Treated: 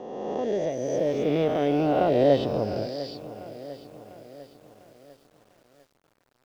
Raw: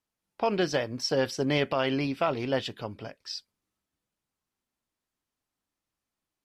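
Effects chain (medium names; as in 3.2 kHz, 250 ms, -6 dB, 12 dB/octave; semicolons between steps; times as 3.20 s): reverse spectral sustain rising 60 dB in 2.19 s; Doppler pass-by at 2.62 s, 35 m/s, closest 24 m; low-pass 4.7 kHz 12 dB/octave; resonant low shelf 790 Hz +11.5 dB, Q 1.5; bit-crushed delay 699 ms, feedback 55%, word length 7-bit, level -14.5 dB; trim -5.5 dB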